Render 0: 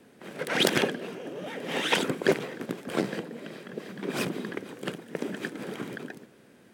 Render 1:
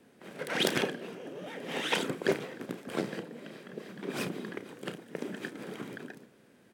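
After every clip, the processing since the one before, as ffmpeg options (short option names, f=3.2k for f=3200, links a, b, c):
-filter_complex "[0:a]asplit=2[a][b];[b]adelay=33,volume=-12dB[c];[a][c]amix=inputs=2:normalize=0,volume=-5dB"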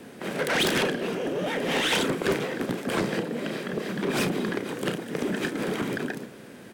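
-filter_complex "[0:a]asplit=2[a][b];[b]acompressor=threshold=-41dB:ratio=6,volume=2dB[c];[a][c]amix=inputs=2:normalize=0,asoftclip=type=tanh:threshold=-28.5dB,volume=9dB"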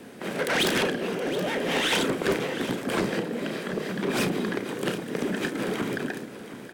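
-af "bandreject=f=50:t=h:w=6,bandreject=f=100:t=h:w=6,bandreject=f=150:t=h:w=6,aecho=1:1:722:0.211"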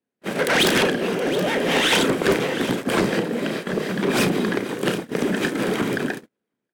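-af "agate=range=-47dB:threshold=-32dB:ratio=16:detection=peak,volume=6dB"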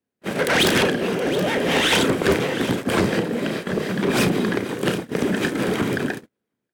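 -af "equalizer=f=89:t=o:w=0.9:g=9.5"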